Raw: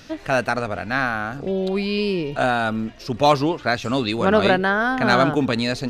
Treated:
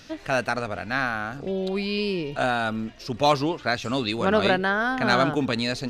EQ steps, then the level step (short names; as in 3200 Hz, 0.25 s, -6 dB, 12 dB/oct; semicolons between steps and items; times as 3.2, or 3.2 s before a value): bell 4800 Hz +3 dB 2.6 oct; -4.5 dB